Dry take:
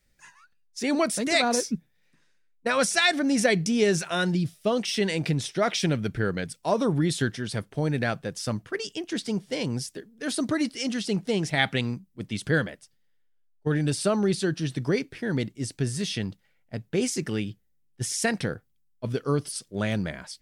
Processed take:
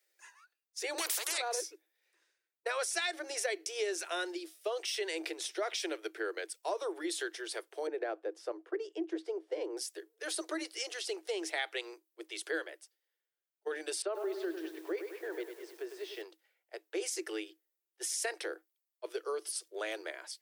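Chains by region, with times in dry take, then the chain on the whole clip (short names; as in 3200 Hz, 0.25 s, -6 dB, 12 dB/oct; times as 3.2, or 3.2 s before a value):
0.98–1.38 HPF 780 Hz + spectral compressor 4:1
7.87–9.77 LPF 2400 Hz 6 dB/oct + tilt shelf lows +8.5 dB
14.02–16.22 tape spacing loss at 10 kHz 30 dB + lo-fi delay 0.101 s, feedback 55%, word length 8-bit, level -8.5 dB
whole clip: Chebyshev high-pass 320 Hz, order 10; high shelf 11000 Hz +9 dB; compressor 3:1, threshold -28 dBFS; gain -5 dB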